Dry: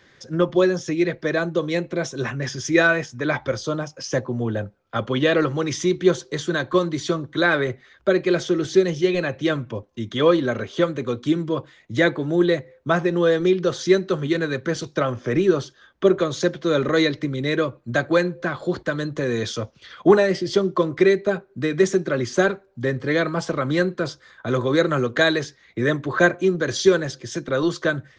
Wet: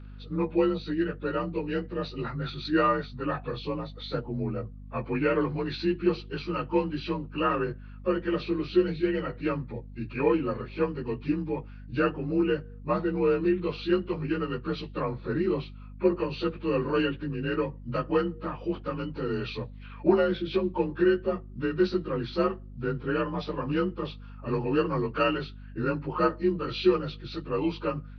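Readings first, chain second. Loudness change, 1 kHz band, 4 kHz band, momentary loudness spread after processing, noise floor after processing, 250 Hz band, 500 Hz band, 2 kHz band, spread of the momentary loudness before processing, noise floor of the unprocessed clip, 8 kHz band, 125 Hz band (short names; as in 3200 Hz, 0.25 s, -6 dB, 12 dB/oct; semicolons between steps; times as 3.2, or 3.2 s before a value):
-7.0 dB, -4.0 dB, -9.5 dB, 9 LU, -44 dBFS, -5.5 dB, -8.0 dB, -12.5 dB, 9 LU, -56 dBFS, n/a, -6.5 dB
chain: inharmonic rescaling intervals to 88%; hum 50 Hz, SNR 15 dB; gain -5.5 dB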